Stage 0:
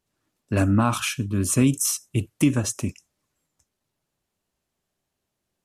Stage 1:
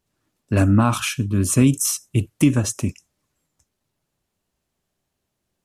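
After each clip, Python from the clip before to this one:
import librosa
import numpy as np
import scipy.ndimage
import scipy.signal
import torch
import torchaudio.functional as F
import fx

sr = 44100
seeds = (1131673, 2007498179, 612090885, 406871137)

y = fx.low_shelf(x, sr, hz=210.0, db=3.5)
y = y * librosa.db_to_amplitude(2.0)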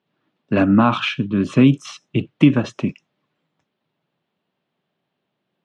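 y = scipy.signal.sosfilt(scipy.signal.cheby1(3, 1.0, [150.0, 3500.0], 'bandpass', fs=sr, output='sos'), x)
y = y * librosa.db_to_amplitude(4.5)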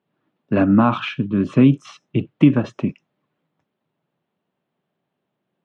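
y = fx.high_shelf(x, sr, hz=2900.0, db=-11.5)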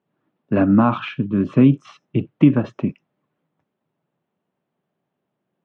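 y = fx.lowpass(x, sr, hz=2300.0, slope=6)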